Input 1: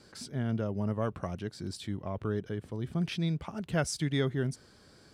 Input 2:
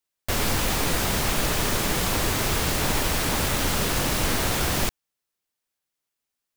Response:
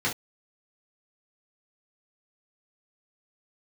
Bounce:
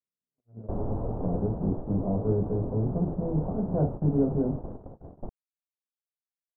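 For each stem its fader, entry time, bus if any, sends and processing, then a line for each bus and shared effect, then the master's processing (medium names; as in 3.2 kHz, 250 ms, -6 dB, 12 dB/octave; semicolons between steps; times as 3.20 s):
1.05 s -14 dB -> 1.32 s -3 dB, 0.00 s, send -7 dB, spectral levelling over time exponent 0.6
-0.5 dB, 0.40 s, no send, auto duck -9 dB, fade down 1.90 s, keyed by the first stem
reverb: on, pre-delay 3 ms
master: inverse Chebyshev low-pass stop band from 2 kHz, stop band 50 dB; gate -32 dBFS, range -56 dB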